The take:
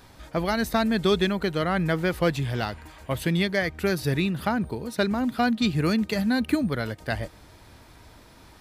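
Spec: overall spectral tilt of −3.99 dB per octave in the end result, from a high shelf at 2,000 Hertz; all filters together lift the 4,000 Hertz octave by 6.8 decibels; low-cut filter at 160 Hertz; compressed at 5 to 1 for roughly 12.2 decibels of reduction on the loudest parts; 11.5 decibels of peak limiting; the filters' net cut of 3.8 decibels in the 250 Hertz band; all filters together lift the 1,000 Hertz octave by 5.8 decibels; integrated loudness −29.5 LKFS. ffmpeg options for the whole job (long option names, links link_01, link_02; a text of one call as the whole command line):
ffmpeg -i in.wav -af "highpass=160,equalizer=frequency=250:width_type=o:gain=-4,equalizer=frequency=1000:width_type=o:gain=7,highshelf=frequency=2000:gain=4.5,equalizer=frequency=4000:width_type=o:gain=3.5,acompressor=threshold=-29dB:ratio=5,volume=6dB,alimiter=limit=-17.5dB:level=0:latency=1" out.wav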